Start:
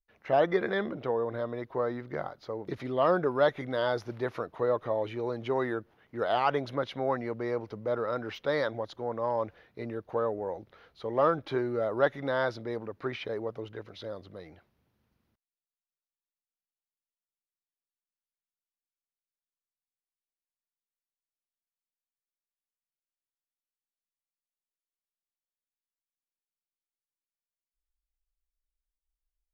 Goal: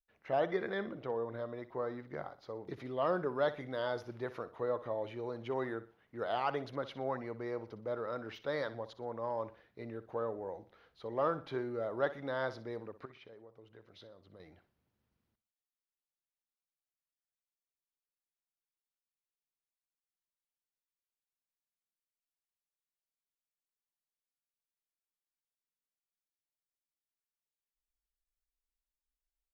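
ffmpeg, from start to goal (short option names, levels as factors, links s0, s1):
-filter_complex "[0:a]asettb=1/sr,asplit=3[s0][s1][s2];[s0]atrim=end=13.054[s3];[s1]atrim=start=13.05:end=14.4,asetpts=PTS-STARTPTS,afade=t=in:d=0.004:c=qsin,afade=t=out:st=1.346:d=0.004:c=qsin,acompressor=threshold=0.00562:ratio=10[s4];[s2]atrim=start=14.396[s5];[s3][s4]acrossfade=d=0.004:c1=hsin:c2=qsin[s6];[s6][s5]acrossfade=d=0.004:c1=qsin:c2=hsin,aecho=1:1:61|122|183:0.178|0.0622|0.0218,volume=0.422"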